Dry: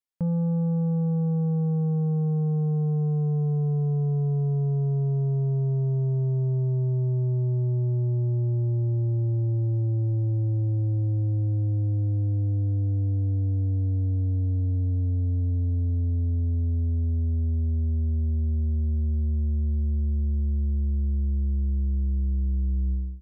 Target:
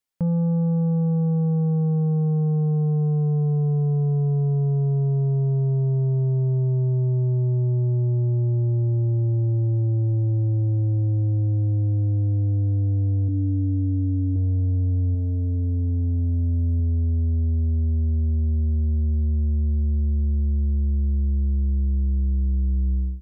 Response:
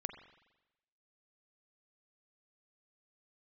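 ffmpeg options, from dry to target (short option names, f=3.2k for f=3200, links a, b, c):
-filter_complex "[0:a]asettb=1/sr,asplit=3[a][b][c];[a]atrim=end=13.284[d];[b]atrim=start=13.28:end=14.36,asetpts=PTS-STARTPTS,afade=t=in:d=0.004:c=qsin,afade=t=out:st=1.076:d=0.004:c=qsin,equalizer=f=125:t=o:w=1:g=-7,equalizer=f=250:t=o:w=1:g=10,equalizer=f=500:t=o:w=1:g=-7,equalizer=f=1k:t=o:w=1:g=-11[e];[c]atrim=start=14.356[f];[d][e]acrossfade=d=0.004:c1=hsin:c2=qsin[g];[g][f]acrossfade=d=0.004:c1=qsin:c2=hsin,alimiter=level_in=1.5dB:limit=-24dB:level=0:latency=1:release=161,volume=-1.5dB,asettb=1/sr,asplit=3[h][i][j];[h]atrim=end=15.124[k];[i]atrim=start=15.12:end=16.8,asetpts=PTS-STARTPTS,afade=t=in:d=0.004:c=qsin,afade=t=out:st=1.676:d=0.004:c=qsin,asplit=2[l][m];[m]adelay=27,volume=-10.5dB[n];[l][n]amix=inputs=2:normalize=0,atrim=end_sample=74088[o];[j]atrim=start=16.796[p];[k][o]acrossfade=d=0.004:c1=hsin:c2=qsin[q];[q][p]acrossfade=d=0.004:c1=qsin:c2=hsin,volume=6.5dB"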